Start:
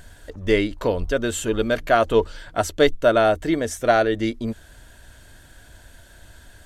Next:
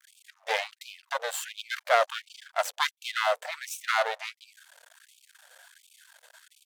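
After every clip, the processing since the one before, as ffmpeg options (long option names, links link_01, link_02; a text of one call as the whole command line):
ffmpeg -i in.wav -af "aeval=exprs='max(val(0),0)':channel_layout=same,afftfilt=real='re*gte(b*sr/1024,440*pow(2300/440,0.5+0.5*sin(2*PI*1.4*pts/sr)))':imag='im*gte(b*sr/1024,440*pow(2300/440,0.5+0.5*sin(2*PI*1.4*pts/sr)))':win_size=1024:overlap=0.75" out.wav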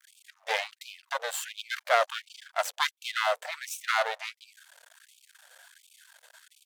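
ffmpeg -i in.wav -af "lowshelf=frequency=500:gain=-4.5" out.wav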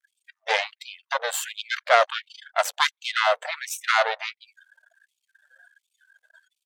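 ffmpeg -i in.wav -af "afftdn=noise_reduction=26:noise_floor=-49,volume=6dB" out.wav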